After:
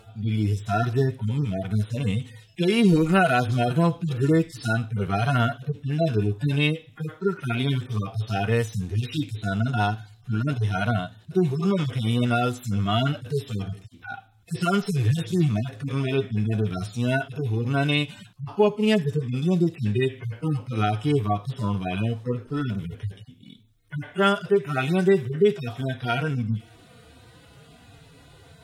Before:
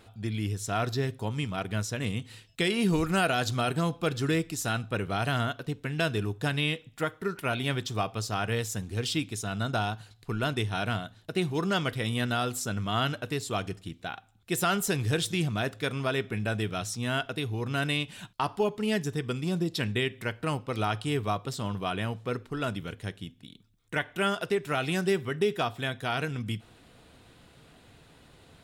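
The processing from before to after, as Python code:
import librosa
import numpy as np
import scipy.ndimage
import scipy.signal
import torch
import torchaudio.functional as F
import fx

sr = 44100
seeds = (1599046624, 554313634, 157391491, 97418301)

y = fx.hpss_only(x, sr, part='harmonic')
y = y * 10.0 ** (8.0 / 20.0)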